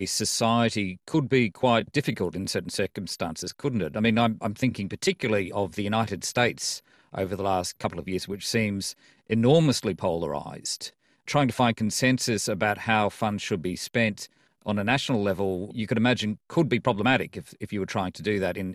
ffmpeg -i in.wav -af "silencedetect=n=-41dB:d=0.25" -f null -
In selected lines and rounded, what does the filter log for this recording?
silence_start: 6.79
silence_end: 7.13 | silence_duration: 0.34
silence_start: 8.92
silence_end: 9.30 | silence_duration: 0.37
silence_start: 10.89
silence_end: 11.28 | silence_duration: 0.39
silence_start: 14.26
silence_end: 14.66 | silence_duration: 0.40